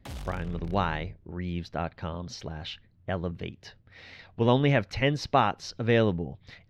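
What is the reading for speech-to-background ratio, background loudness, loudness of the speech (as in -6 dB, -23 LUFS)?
13.5 dB, -42.5 LUFS, -29.0 LUFS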